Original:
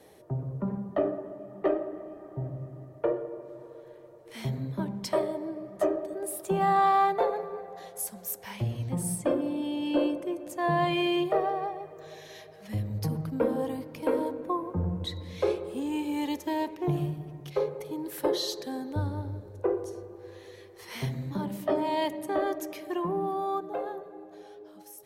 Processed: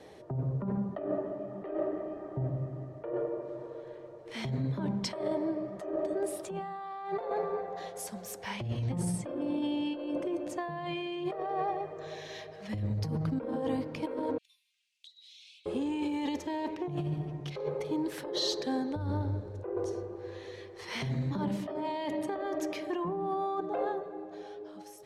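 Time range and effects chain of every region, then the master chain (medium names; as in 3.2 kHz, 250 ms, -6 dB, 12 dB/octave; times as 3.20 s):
14.38–15.66 s: steep high-pass 2.7 kHz 48 dB/octave + compression 16:1, threshold -53 dBFS
whole clip: low-pass 6 kHz 12 dB/octave; compressor with a negative ratio -33 dBFS, ratio -1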